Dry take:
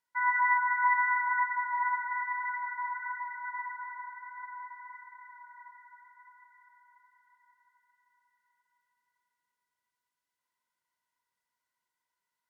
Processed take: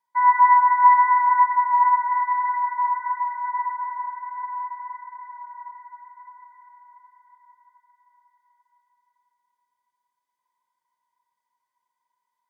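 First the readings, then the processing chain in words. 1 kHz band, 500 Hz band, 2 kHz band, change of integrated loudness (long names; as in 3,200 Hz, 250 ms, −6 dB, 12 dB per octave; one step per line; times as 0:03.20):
+13.5 dB, can't be measured, −0.5 dB, +10.0 dB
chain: parametric band 980 Hz +14 dB 0.38 octaves
notch comb filter 1,400 Hz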